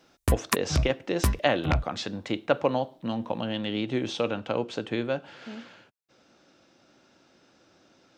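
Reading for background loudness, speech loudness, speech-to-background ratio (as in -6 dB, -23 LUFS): -29.5 LUFS, -29.5 LUFS, 0.0 dB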